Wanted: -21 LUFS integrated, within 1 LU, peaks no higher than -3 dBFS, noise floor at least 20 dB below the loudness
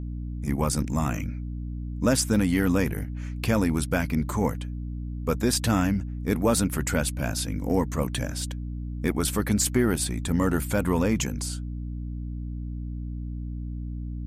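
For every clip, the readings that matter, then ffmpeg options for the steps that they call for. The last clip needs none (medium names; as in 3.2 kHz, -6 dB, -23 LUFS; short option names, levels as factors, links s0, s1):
hum 60 Hz; highest harmonic 300 Hz; hum level -30 dBFS; loudness -27.0 LUFS; peak level -10.5 dBFS; loudness target -21.0 LUFS
-> -af "bandreject=f=60:t=h:w=6,bandreject=f=120:t=h:w=6,bandreject=f=180:t=h:w=6,bandreject=f=240:t=h:w=6,bandreject=f=300:t=h:w=6"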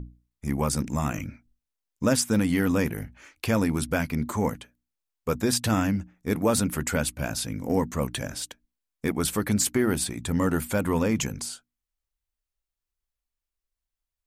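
hum not found; loudness -26.5 LUFS; peak level -10.5 dBFS; loudness target -21.0 LUFS
-> -af "volume=1.88"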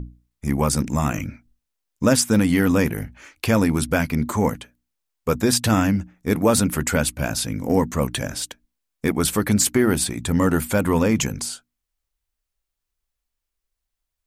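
loudness -21.0 LUFS; peak level -5.0 dBFS; noise floor -82 dBFS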